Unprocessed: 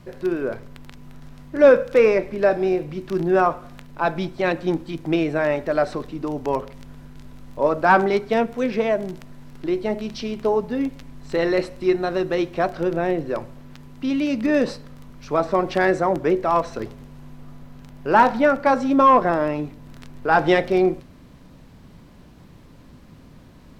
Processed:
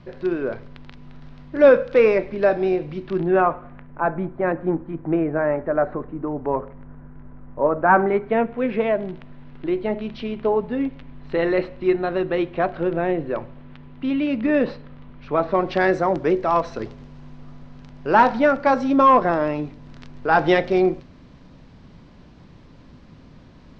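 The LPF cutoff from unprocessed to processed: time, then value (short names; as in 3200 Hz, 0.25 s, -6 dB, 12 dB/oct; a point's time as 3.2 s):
LPF 24 dB/oct
2.96 s 4700 Hz
3.53 s 2500 Hz
4.18 s 1700 Hz
7.71 s 1700 Hz
8.94 s 3400 Hz
15.42 s 3400 Hz
15.87 s 5800 Hz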